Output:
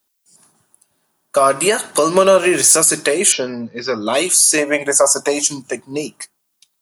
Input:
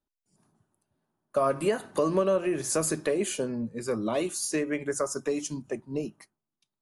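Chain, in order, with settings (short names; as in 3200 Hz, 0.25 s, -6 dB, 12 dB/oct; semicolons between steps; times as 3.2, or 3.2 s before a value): tilt +3.5 dB/oct; 2.16–2.76 sample leveller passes 1; 3.32–4.07 Chebyshev low-pass 5600 Hz, order 6; 4.58–5.42 band shelf 750 Hz +10.5 dB 1.1 oct; maximiser +14.5 dB; gain -1 dB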